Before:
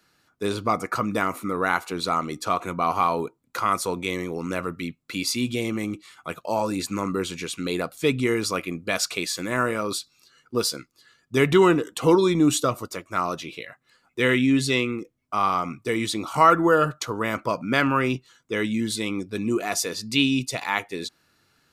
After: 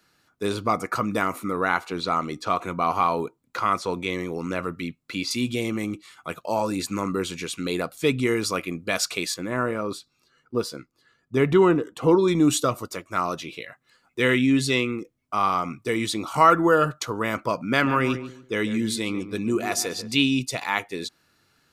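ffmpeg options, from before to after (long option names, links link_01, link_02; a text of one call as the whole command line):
ffmpeg -i in.wav -filter_complex "[0:a]asettb=1/sr,asplit=3[link_01][link_02][link_03];[link_01]atrim=end=1.524[link_04];[link_02]atrim=start=1.52:end=5.31,asetpts=PTS-STARTPTS,afade=type=in:duration=0.004:curve=qsin,afade=type=out:start_time=3.786:duration=0.004:curve=qsin,acrossover=split=5800[link_05][link_06];[link_06]acompressor=threshold=-52dB:ratio=4:attack=1:release=60[link_07];[link_05][link_07]amix=inputs=2:normalize=0[link_08];[link_03]atrim=start=5.306[link_09];[link_04][link_08]acrossfade=duration=0.004:curve1=hsin:curve2=qsin[link_10];[link_10][link_09]acrossfade=duration=0.004:curve1=qsin:curve2=hsin,asettb=1/sr,asplit=3[link_11][link_12][link_13];[link_11]atrim=end=9.344[link_14];[link_12]atrim=start=9.34:end=12.28,asetpts=PTS-STARTPTS,afade=type=in:duration=0.004:curve=qsin,afade=type=out:start_time=2.936:duration=0.004:curve=qsin,highshelf=frequency=2300:gain=-12[link_15];[link_13]atrim=start=12.276[link_16];[link_14][link_15]acrossfade=duration=0.004:curve1=hsin:curve2=qsin[link_17];[link_17][link_16]acrossfade=duration=0.004:curve1=qsin:curve2=hsin,asettb=1/sr,asplit=3[link_18][link_19][link_20];[link_18]atrim=end=17.694[link_21];[link_19]atrim=start=17.69:end=20.15,asetpts=PTS-STARTPTS,afade=type=in:duration=0.004:curve=qsin,afade=type=out:start_time=2.456:duration=0.004:curve=qsin,asplit=2[link_22][link_23];[link_23]adelay=142,lowpass=frequency=1600:poles=1,volume=-11dB,asplit=2[link_24][link_25];[link_25]adelay=142,lowpass=frequency=1600:poles=1,volume=0.27,asplit=2[link_26][link_27];[link_27]adelay=142,lowpass=frequency=1600:poles=1,volume=0.27[link_28];[link_22][link_24][link_26][link_28]amix=inputs=4:normalize=0,atrim=end_sample=108486[link_29];[link_20]atrim=start=20.146[link_30];[link_21][link_29]acrossfade=duration=0.004:curve1=hsin:curve2=qsin[link_31];[link_31][link_30]acrossfade=duration=0.004:curve1=qsin:curve2=hsin" out.wav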